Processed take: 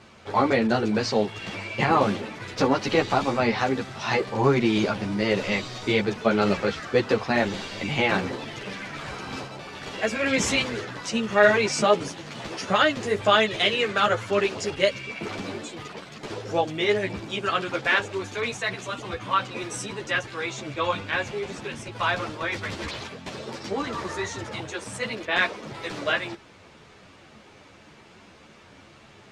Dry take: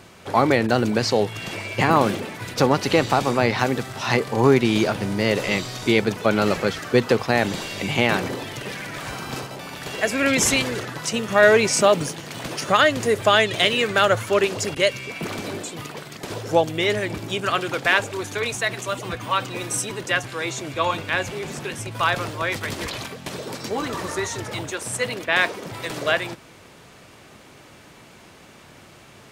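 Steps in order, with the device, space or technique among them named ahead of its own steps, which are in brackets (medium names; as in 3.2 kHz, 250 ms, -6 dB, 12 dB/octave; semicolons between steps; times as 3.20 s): string-machine ensemble chorus (three-phase chorus; low-pass 5.9 kHz 12 dB/octave)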